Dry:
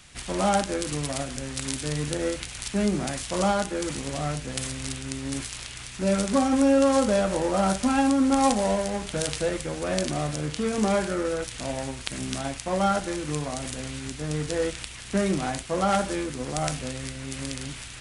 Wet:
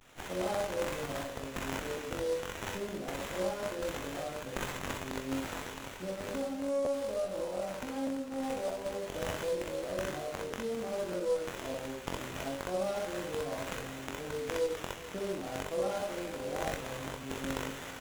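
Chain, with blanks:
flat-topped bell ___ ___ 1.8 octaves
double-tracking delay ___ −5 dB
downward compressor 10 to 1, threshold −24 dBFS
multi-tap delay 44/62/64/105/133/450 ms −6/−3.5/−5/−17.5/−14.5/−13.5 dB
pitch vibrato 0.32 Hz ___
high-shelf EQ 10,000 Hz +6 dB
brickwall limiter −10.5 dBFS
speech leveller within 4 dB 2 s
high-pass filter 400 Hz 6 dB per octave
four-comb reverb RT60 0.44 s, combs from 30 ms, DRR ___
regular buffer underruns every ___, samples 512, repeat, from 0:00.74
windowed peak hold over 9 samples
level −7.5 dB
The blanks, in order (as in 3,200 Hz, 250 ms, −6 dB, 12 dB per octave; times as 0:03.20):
1,500 Hz, −10 dB, 22 ms, 35 cents, 10 dB, 0.61 s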